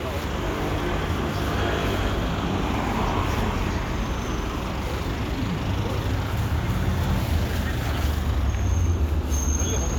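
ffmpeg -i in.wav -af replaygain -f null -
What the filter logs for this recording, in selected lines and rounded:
track_gain = +10.3 dB
track_peak = 0.190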